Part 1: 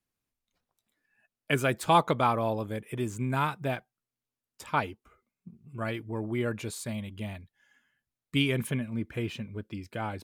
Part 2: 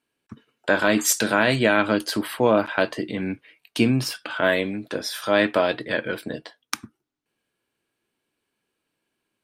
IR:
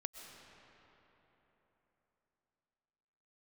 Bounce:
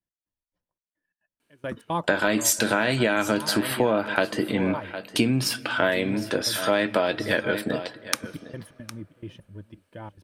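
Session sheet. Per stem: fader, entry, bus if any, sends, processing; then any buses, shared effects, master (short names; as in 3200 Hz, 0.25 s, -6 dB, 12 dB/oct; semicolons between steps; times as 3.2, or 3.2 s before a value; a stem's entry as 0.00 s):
-5.0 dB, 0.00 s, no send, echo send -21 dB, high shelf 2100 Hz -10 dB; step gate "x..xx.xx" 174 bpm -24 dB; ripple EQ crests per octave 1.2, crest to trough 8 dB
+3.0 dB, 1.40 s, send -16 dB, echo send -16 dB, bell 10000 Hz +2.5 dB 0.77 oct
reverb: on, RT60 3.9 s, pre-delay 85 ms
echo: echo 0.758 s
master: notch 1100 Hz, Q 20; compressor 6:1, threshold -18 dBFS, peak gain reduction 9 dB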